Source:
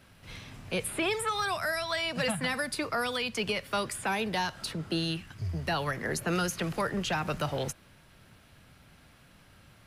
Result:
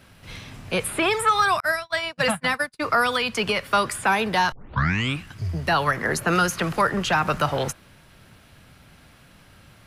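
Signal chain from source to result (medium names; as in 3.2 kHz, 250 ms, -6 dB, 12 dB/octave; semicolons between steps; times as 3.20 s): 1.60–2.82 s: gate -30 dBFS, range -44 dB; 4.52 s: tape start 0.71 s; dynamic bell 1.2 kHz, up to +7 dB, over -46 dBFS, Q 1.1; trim +6 dB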